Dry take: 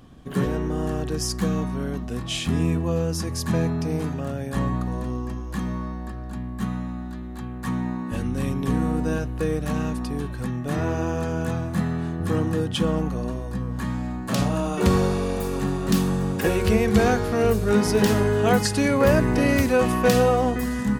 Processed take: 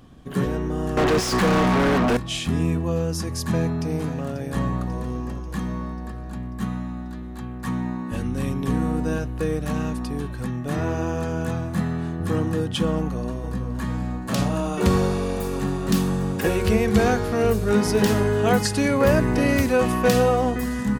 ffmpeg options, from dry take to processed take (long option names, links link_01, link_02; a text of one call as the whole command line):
ffmpeg -i in.wav -filter_complex "[0:a]asettb=1/sr,asplit=3[link_01][link_02][link_03];[link_01]atrim=end=0.974[link_04];[link_02]atrim=start=0.97:end=2.17,asetpts=PTS-STARTPTS,afade=type=in:duration=0.004:curve=qsin,afade=type=out:start_time=1.196:duration=0.004:curve=qsin,asplit=2[link_05][link_06];[link_06]highpass=frequency=720:poles=1,volume=40dB,asoftclip=type=tanh:threshold=-11.5dB[link_07];[link_05][link_07]amix=inputs=2:normalize=0,lowpass=frequency=1800:poles=1,volume=-6dB[link_08];[link_03]atrim=start=2.166[link_09];[link_04][link_08]acrossfade=duration=0.004:curve1=hsin:curve2=qsin[link_10];[link_10][link_09]acrossfade=duration=0.004:curve1=qsin:curve2=hsin,asplit=2[link_11][link_12];[link_12]afade=type=in:start_time=3.51:duration=0.01,afade=type=out:start_time=4.31:duration=0.01,aecho=0:1:540|1080|1620|2160|2700|3240|3780|4320:0.251189|0.163273|0.106127|0.0689827|0.0448387|0.0291452|0.0189444|0.0123138[link_13];[link_11][link_13]amix=inputs=2:normalize=0,asplit=2[link_14][link_15];[link_15]afade=type=in:start_time=12.96:duration=0.01,afade=type=out:start_time=13.7:duration=0.01,aecho=0:1:470|940|1410|1880|2350:0.298538|0.149269|0.0746346|0.0373173|0.0186586[link_16];[link_14][link_16]amix=inputs=2:normalize=0" out.wav